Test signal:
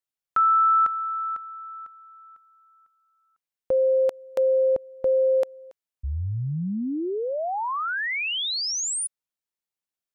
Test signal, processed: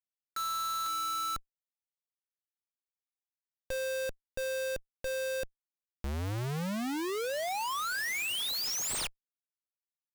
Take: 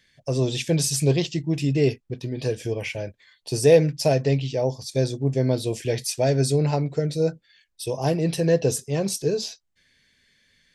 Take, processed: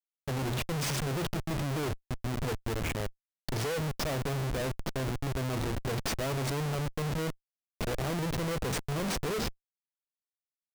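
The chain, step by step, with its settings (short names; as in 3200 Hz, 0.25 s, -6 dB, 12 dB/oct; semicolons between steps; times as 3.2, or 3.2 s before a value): CVSD 64 kbps; Schmitt trigger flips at -28 dBFS; gain -7.5 dB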